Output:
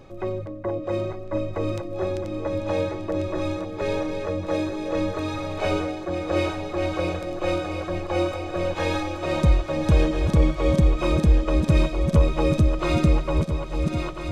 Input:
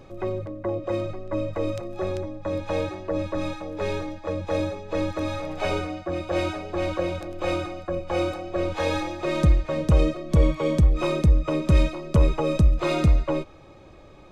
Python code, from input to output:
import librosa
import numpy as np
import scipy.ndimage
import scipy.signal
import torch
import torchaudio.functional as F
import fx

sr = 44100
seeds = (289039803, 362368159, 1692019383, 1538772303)

y = fx.reverse_delay_fb(x, sr, ms=673, feedback_pct=68, wet_db=-6.5)
y = fx.echo_wet_highpass(y, sr, ms=841, feedback_pct=70, hz=3900.0, wet_db=-14.0)